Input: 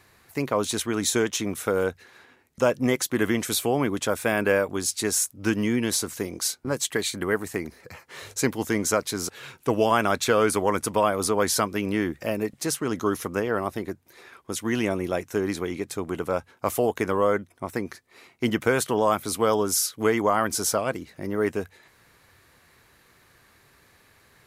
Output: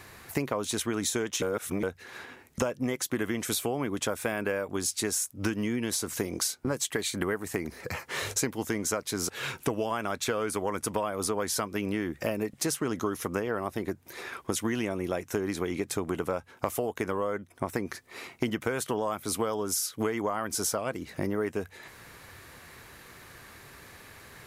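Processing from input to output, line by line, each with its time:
1.42–1.83 s: reverse
whole clip: compression 10:1, threshold -35 dBFS; peaking EQ 4.2 kHz -2 dB 0.3 oct; trim +8.5 dB

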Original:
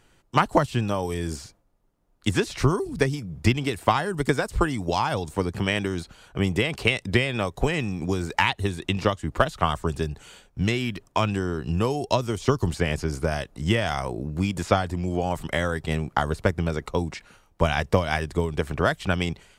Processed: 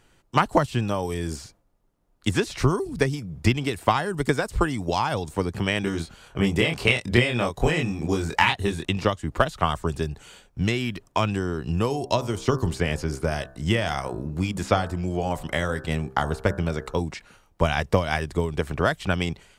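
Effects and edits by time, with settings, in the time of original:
5.81–8.85 s: doubling 25 ms -2.5 dB
11.86–17.00 s: de-hum 65.66 Hz, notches 27

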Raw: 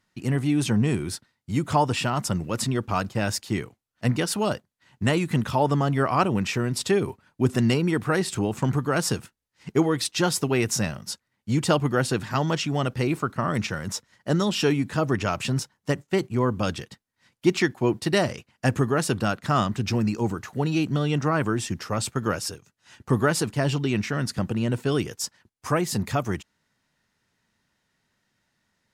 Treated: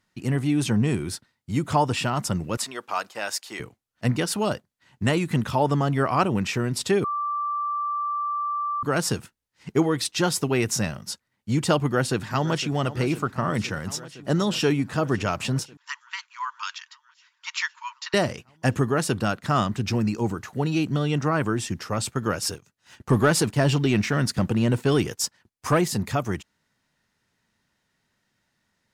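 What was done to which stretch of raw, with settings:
2.57–3.60 s: high-pass 630 Hz
7.04–8.83 s: bleep 1.17 kHz -24 dBFS
11.87–12.76 s: echo throw 510 ms, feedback 80%, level -15 dB
15.77–18.14 s: brick-wall FIR band-pass 880–7500 Hz
22.42–25.88 s: waveshaping leveller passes 1

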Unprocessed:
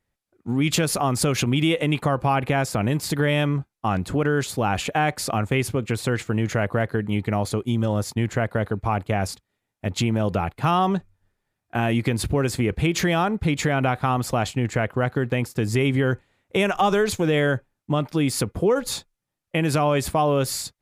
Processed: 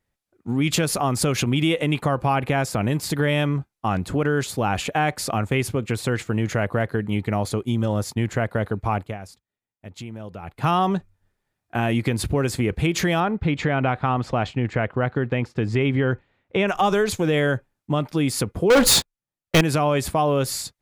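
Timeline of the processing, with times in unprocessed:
8.96–10.64 s: dip -13.5 dB, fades 0.22 s
13.20–16.68 s: low-pass 3.5 kHz
18.70–19.61 s: waveshaping leveller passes 5

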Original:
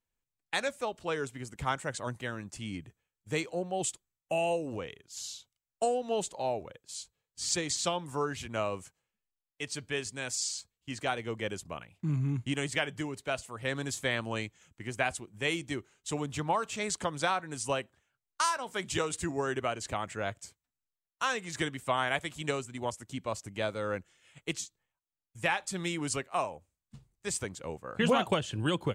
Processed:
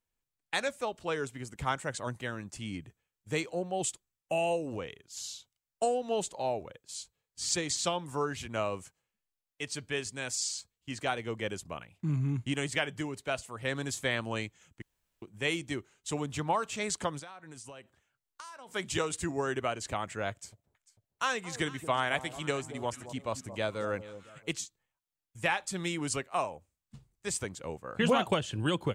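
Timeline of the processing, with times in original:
14.82–15.22 s: room tone
17.19–18.74 s: compression 8:1, threshold -44 dBFS
20.30–24.49 s: echo whose repeats swap between lows and highs 223 ms, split 960 Hz, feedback 52%, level -12 dB

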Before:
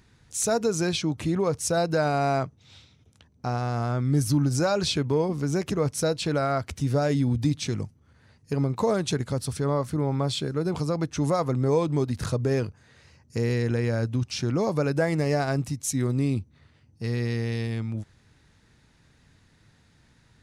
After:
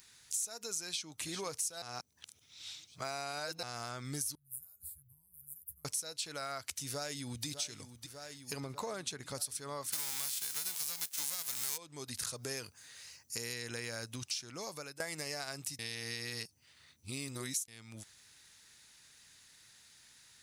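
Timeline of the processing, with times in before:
0.87–1.28 s: echo throw 390 ms, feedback 45%, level -17 dB
1.82–3.63 s: reverse
4.35–5.85 s: inverse Chebyshev band-stop 210–6300 Hz, stop band 50 dB
6.84–7.46 s: echo throw 600 ms, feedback 70%, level -13.5 dB
8.60–9.35 s: treble shelf 3.3 kHz -11.5 dB
9.92–11.76 s: formants flattened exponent 0.3
12.33–13.54 s: treble shelf 9.9 kHz +7 dB
14.07–15.00 s: fade out, to -19 dB
15.79–17.68 s: reverse
whole clip: pre-emphasis filter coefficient 0.97; compression 6:1, threshold -48 dBFS; trim +11.5 dB

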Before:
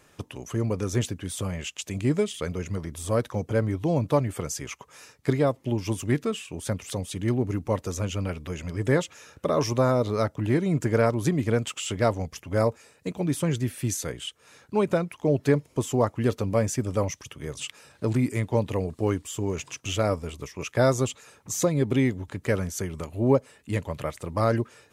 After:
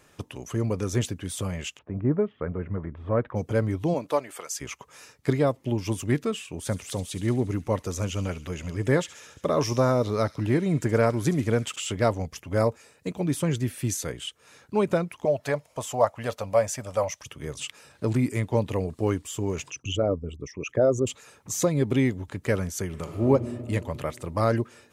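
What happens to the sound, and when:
1.77–3.35 s: low-pass 1.3 kHz -> 2.2 kHz 24 dB/octave
3.93–4.60 s: high-pass 290 Hz -> 1 kHz
6.58–11.76 s: feedback echo behind a high-pass 70 ms, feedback 70%, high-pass 3.1 kHz, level -12 dB
15.25–17.22 s: resonant low shelf 470 Hz -8.5 dB, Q 3
19.70–21.07 s: resonances exaggerated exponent 2
22.86–23.27 s: reverb throw, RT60 2.7 s, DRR 3.5 dB

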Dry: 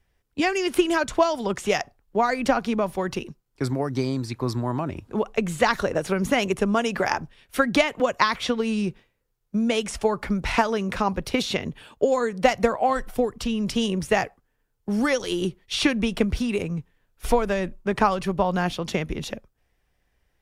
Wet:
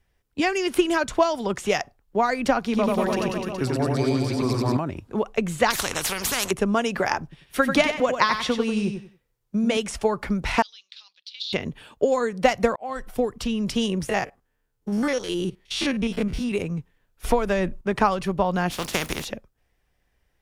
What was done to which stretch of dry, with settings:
2.64–4.77 s: reverse bouncing-ball echo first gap 90 ms, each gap 1.1×, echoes 6, each echo -2 dB
5.70–6.51 s: spectrum-flattening compressor 4:1
7.23–9.77 s: feedback delay 92 ms, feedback 23%, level -7 dB
10.62–11.53 s: Butterworth band-pass 4 kHz, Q 2.6
12.76–13.36 s: fade in equal-power
14.09–16.52 s: spectrogram pixelated in time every 50 ms
17.27–17.81 s: three bands compressed up and down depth 70%
18.70–19.24 s: spectral contrast reduction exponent 0.43

